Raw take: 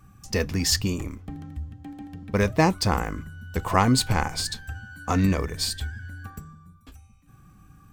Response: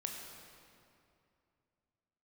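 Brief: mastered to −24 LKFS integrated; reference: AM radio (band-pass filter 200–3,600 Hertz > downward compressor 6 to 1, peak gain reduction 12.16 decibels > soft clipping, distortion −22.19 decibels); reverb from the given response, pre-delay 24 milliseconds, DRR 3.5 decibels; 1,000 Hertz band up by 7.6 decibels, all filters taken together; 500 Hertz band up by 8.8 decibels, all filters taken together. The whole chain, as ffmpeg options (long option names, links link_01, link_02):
-filter_complex "[0:a]equalizer=frequency=500:width_type=o:gain=9,equalizer=frequency=1000:width_type=o:gain=6.5,asplit=2[link_01][link_02];[1:a]atrim=start_sample=2205,adelay=24[link_03];[link_02][link_03]afir=irnorm=-1:irlink=0,volume=-3dB[link_04];[link_01][link_04]amix=inputs=2:normalize=0,highpass=200,lowpass=3600,acompressor=threshold=-19dB:ratio=6,asoftclip=threshold=-10dB,volume=3.5dB"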